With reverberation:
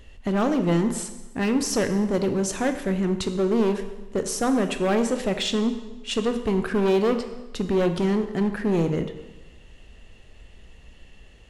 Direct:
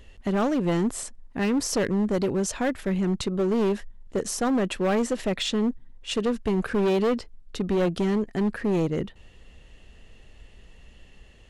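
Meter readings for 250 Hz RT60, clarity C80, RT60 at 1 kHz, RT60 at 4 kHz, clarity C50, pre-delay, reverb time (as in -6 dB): 1.1 s, 11.5 dB, 1.1 s, 1.0 s, 9.5 dB, 7 ms, 1.1 s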